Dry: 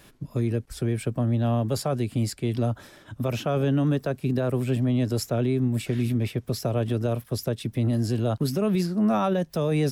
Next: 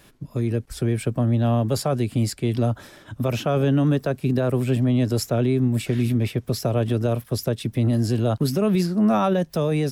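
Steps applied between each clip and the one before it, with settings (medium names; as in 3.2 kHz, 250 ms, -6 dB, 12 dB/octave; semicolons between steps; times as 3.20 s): level rider gain up to 3.5 dB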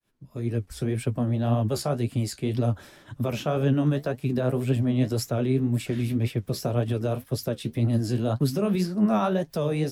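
fade-in on the opening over 0.56 s; flange 1.9 Hz, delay 6.4 ms, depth 9.7 ms, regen +47%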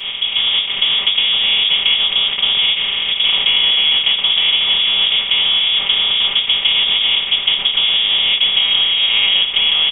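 spectral levelling over time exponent 0.2; frequency inversion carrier 3.5 kHz; comb 5.1 ms, depth 77%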